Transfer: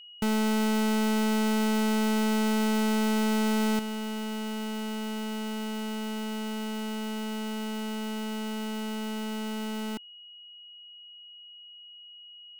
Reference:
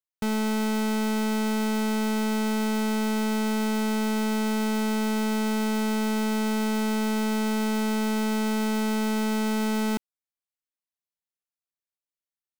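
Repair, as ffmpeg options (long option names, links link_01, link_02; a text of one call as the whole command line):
ffmpeg -i in.wav -af "bandreject=frequency=2900:width=30,asetnsamples=nb_out_samples=441:pad=0,asendcmd='3.79 volume volume 8dB',volume=0dB" out.wav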